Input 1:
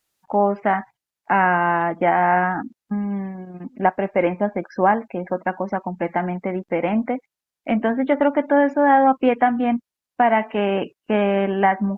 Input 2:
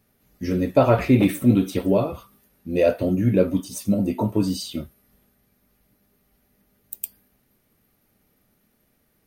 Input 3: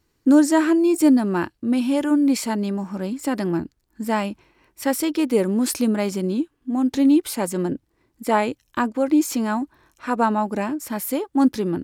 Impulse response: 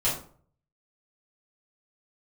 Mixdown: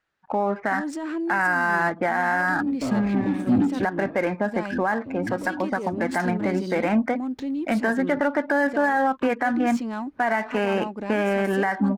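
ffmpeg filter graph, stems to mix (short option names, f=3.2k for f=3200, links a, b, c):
-filter_complex "[0:a]equalizer=f=1.6k:t=o:w=0.68:g=10,volume=0dB,asplit=2[a][b];[1:a]equalizer=f=270:t=o:w=0.46:g=14.5,acontrast=73,alimiter=limit=-10.5dB:level=0:latency=1:release=220,adelay=2050,volume=-2dB[c];[2:a]alimiter=limit=-16dB:level=0:latency=1:release=93,acontrast=86,adelay=450,volume=-13.5dB[d];[b]apad=whole_len=499186[e];[c][e]sidechaincompress=threshold=-32dB:ratio=6:attack=5.6:release=426[f];[a][f][d]amix=inputs=3:normalize=0,adynamicsmooth=sensitivity=7.5:basefreq=3k,alimiter=limit=-13dB:level=0:latency=1:release=94"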